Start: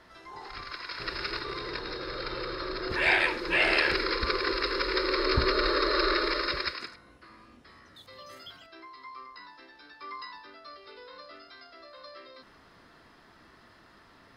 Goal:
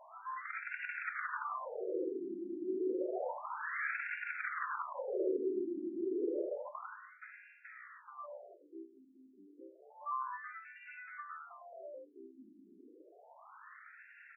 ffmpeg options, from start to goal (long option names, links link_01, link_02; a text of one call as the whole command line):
ffmpeg -i in.wav -filter_complex "[0:a]asplit=2[link_01][link_02];[link_02]aecho=0:1:99|198|297:0.15|0.0539|0.0194[link_03];[link_01][link_03]amix=inputs=2:normalize=0,asoftclip=type=tanh:threshold=-24dB,acrossover=split=520|1100[link_04][link_05][link_06];[link_04]acompressor=threshold=-38dB:ratio=4[link_07];[link_05]acompressor=threshold=-44dB:ratio=4[link_08];[link_06]acompressor=threshold=-43dB:ratio=4[link_09];[link_07][link_08][link_09]amix=inputs=3:normalize=0,afftfilt=real='re*between(b*sr/1024,260*pow(2000/260,0.5+0.5*sin(2*PI*0.3*pts/sr))/1.41,260*pow(2000/260,0.5+0.5*sin(2*PI*0.3*pts/sr))*1.41)':imag='im*between(b*sr/1024,260*pow(2000/260,0.5+0.5*sin(2*PI*0.3*pts/sr))/1.41,260*pow(2000/260,0.5+0.5*sin(2*PI*0.3*pts/sr))*1.41)':win_size=1024:overlap=0.75,volume=5.5dB" out.wav